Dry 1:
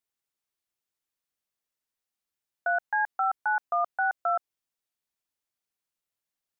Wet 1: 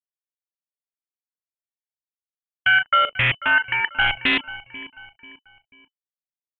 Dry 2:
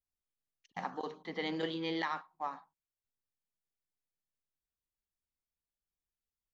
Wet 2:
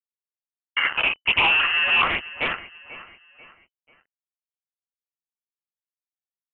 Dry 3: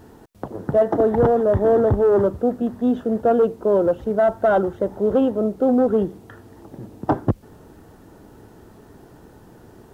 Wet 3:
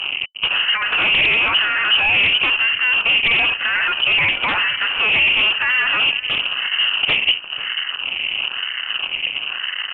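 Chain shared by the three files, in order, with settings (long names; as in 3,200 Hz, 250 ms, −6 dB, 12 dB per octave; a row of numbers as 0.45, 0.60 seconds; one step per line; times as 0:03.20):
adaptive Wiener filter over 9 samples
notch filter 1,200 Hz, Q 7.9
low-pass that shuts in the quiet parts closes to 1,500 Hz, open at −17.5 dBFS
four-comb reverb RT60 0.52 s, combs from 30 ms, DRR 19 dB
downward compressor 2 to 1, threshold −33 dBFS
fuzz pedal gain 43 dB, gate −47 dBFS
all-pass phaser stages 4, 1 Hz, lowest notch 540–1,400 Hz
dynamic equaliser 1,100 Hz, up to +4 dB, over −36 dBFS, Q 0.78
repeating echo 490 ms, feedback 39%, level −17 dB
voice inversion scrambler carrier 3,000 Hz
highs frequency-modulated by the lows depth 0.29 ms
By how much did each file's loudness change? +9.5, +19.0, +4.0 LU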